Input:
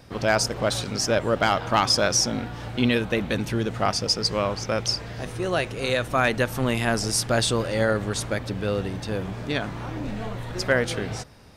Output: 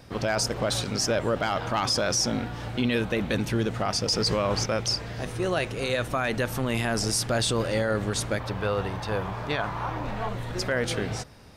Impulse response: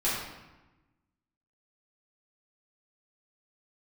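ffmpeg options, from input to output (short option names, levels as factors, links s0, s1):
-filter_complex "[0:a]asettb=1/sr,asplit=3[s0][s1][s2];[s0]atrim=end=4.084[s3];[s1]atrim=start=4.08:end=4.66,asetpts=PTS-STARTPTS,afade=t=in:d=0.004:c=qsin,afade=t=out:st=0.576:d=0.004:c=qsin,acontrast=28[s4];[s2]atrim=start=4.656[s5];[s3][s4]acrossfade=d=0.004:c1=hsin:c2=qsin[s6];[s6][s5]acrossfade=d=0.004:c1=qsin:c2=hsin,asettb=1/sr,asplit=3[s7][s8][s9];[s7]atrim=end=8.404[s10];[s8]atrim=start=8.4:end=10.29,asetpts=PTS-STARTPTS,afade=t=in:d=0.004:c=qsin,afade=t=out:st=1.886:d=0.004:c=qsin,equalizer=f=250:t=o:w=1:g=-7,equalizer=f=1000:t=o:w=1:g=10,equalizer=f=8000:t=o:w=1:g=-5[s11];[s9]atrim=start=10.286[s12];[s10][s11]acrossfade=d=0.004:c1=hsin:c2=qsin[s13];[s13][s12]acrossfade=d=0.004:c1=qsin:c2=hsin,alimiter=limit=0.15:level=0:latency=1:release=14"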